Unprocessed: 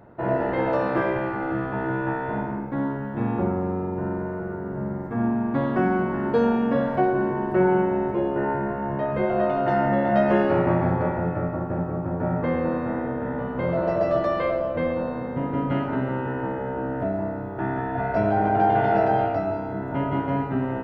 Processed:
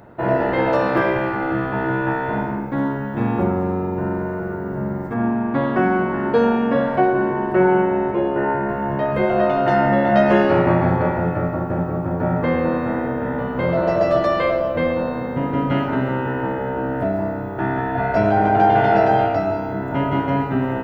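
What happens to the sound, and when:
5.14–8.69 tone controls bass -3 dB, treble -9 dB
whole clip: high shelf 2700 Hz +8.5 dB; gain +4.5 dB

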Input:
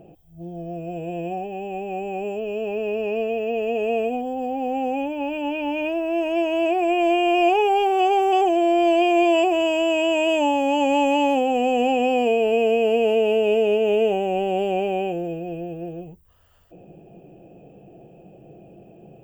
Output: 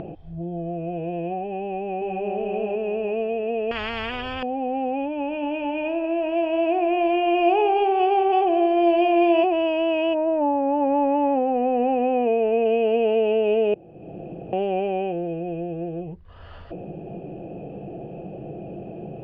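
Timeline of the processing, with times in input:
1.63–2.37 echo throw 0.38 s, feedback 35%, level -1 dB
3.71–4.43 spectral compressor 10:1
5.24–9.44 multi-head echo 64 ms, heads first and third, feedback 44%, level -13.5 dB
10.13–12.64 LPF 1400 Hz -> 2600 Hz 24 dB/oct
13.74–14.53 room tone
whole clip: elliptic low-pass 4600 Hz, stop band 70 dB; upward compressor, threshold -23 dBFS; high shelf 3300 Hz -11 dB

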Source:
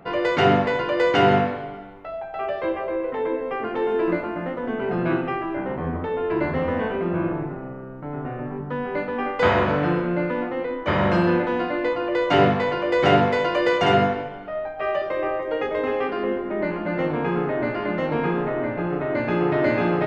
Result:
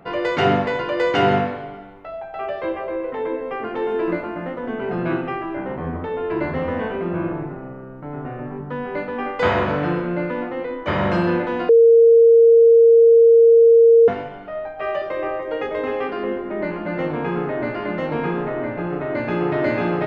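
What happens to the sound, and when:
11.69–14.08 bleep 461 Hz -7.5 dBFS

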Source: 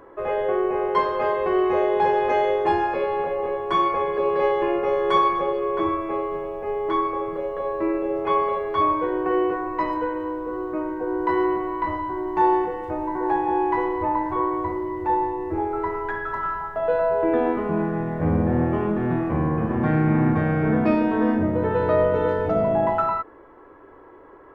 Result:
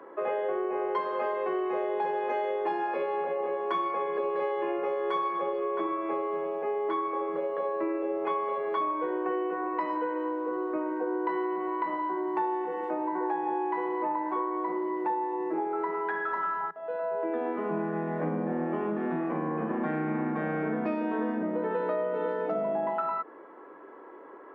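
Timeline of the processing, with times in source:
16.71–17.94 fade in, from -20 dB
whole clip: steep high-pass 160 Hz 96 dB/oct; tone controls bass -5 dB, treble -9 dB; compressor, threshold -27 dBFS

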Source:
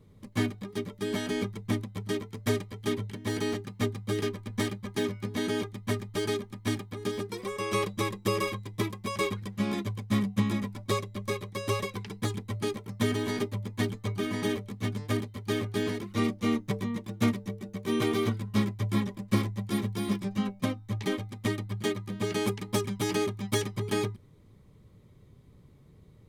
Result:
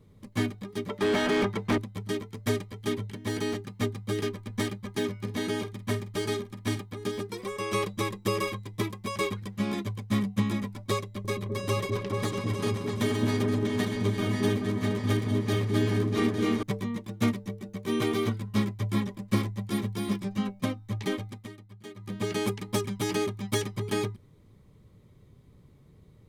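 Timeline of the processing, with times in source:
0.89–1.78 overdrive pedal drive 26 dB, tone 1400 Hz, clips at -15.5 dBFS
5.15–6.81 doubler 47 ms -12 dB
11.03–16.63 repeats that get brighter 0.214 s, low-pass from 400 Hz, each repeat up 2 oct, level 0 dB
21.34–22.08 dip -15 dB, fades 0.13 s

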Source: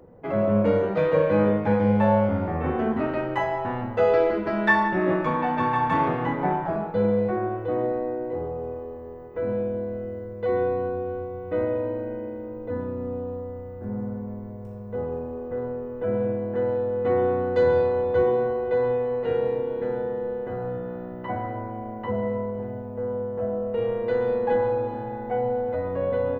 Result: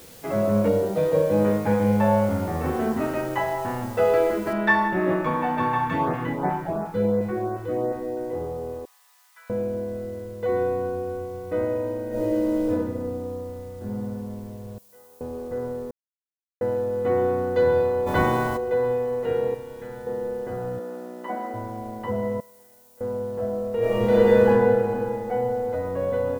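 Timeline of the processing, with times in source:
0.68–1.45 band shelf 1700 Hz -8 dB
4.53 noise floor step -48 dB -59 dB
5.78–8.17 LFO notch saw up 2.8 Hz 340–3600 Hz
8.85–9.5 Bessel high-pass 1800 Hz, order 8
12.09–12.69 reverb throw, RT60 1.5 s, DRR -9 dB
14.78–15.21 differentiator
15.91–16.61 mute
18.06–18.56 spectral limiter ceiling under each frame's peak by 24 dB
19.54–20.07 bell 380 Hz -11 dB 2.5 oct
20.79–21.54 elliptic high-pass 210 Hz
22.4–23.01 differentiator
23.78–24.46 reverb throw, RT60 2.8 s, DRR -10.5 dB

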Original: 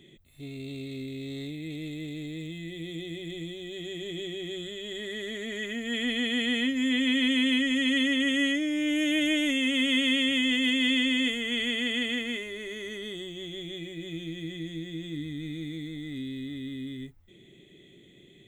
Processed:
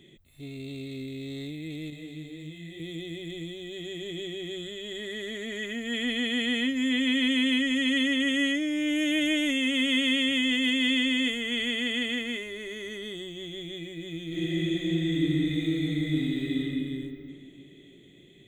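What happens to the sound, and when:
1.9–2.8 detuned doubles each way 39 cents
14.27–16.58 reverb throw, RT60 2.8 s, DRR -8.5 dB

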